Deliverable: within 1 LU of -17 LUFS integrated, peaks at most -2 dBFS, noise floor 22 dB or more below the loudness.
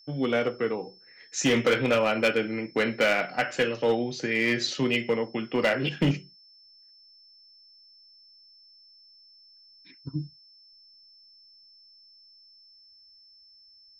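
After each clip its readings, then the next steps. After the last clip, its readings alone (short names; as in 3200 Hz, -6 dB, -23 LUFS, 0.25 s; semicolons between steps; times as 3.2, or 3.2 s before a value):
clipped 0.6%; flat tops at -17.0 dBFS; steady tone 5300 Hz; tone level -53 dBFS; loudness -26.5 LUFS; peak -17.0 dBFS; loudness target -17.0 LUFS
-> clip repair -17 dBFS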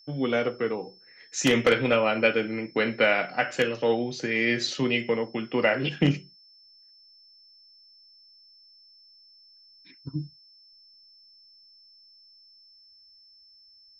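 clipped 0.0%; steady tone 5300 Hz; tone level -53 dBFS
-> notch 5300 Hz, Q 30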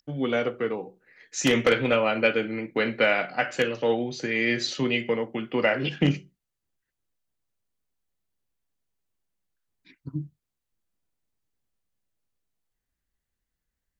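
steady tone none; loudness -25.0 LUFS; peak -8.0 dBFS; loudness target -17.0 LUFS
-> gain +8 dB; limiter -2 dBFS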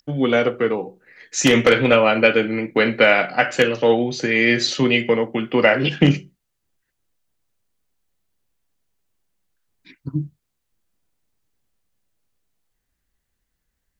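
loudness -17.5 LUFS; peak -2.0 dBFS; noise floor -76 dBFS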